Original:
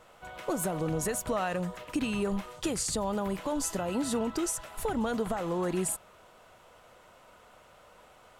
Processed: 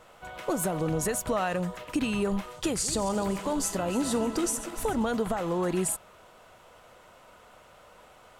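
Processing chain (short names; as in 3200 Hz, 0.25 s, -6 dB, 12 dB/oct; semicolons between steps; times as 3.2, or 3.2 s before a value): 2.65–5.03 regenerating reverse delay 0.147 s, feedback 67%, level -13 dB; gain +2.5 dB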